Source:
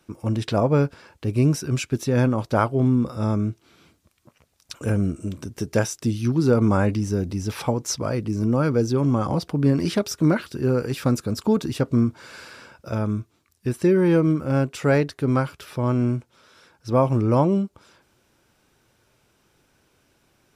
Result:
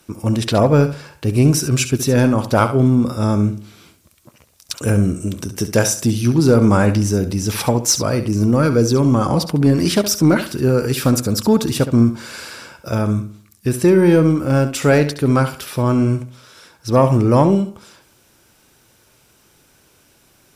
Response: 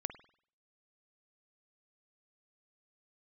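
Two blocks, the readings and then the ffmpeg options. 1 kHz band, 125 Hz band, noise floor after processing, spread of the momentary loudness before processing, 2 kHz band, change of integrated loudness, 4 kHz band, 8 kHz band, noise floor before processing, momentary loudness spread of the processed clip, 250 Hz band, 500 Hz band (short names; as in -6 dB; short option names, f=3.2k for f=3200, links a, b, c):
+6.0 dB, +6.0 dB, -55 dBFS, 10 LU, +7.0 dB, +6.5 dB, +10.5 dB, +12.5 dB, -65 dBFS, 11 LU, +6.0 dB, +6.0 dB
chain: -filter_complex "[0:a]aemphasis=mode=production:type=cd,acontrast=76,asplit=2[a][b];[1:a]atrim=start_sample=2205,adelay=68[c];[b][c]afir=irnorm=-1:irlink=0,volume=-10dB[d];[a][d]amix=inputs=2:normalize=0"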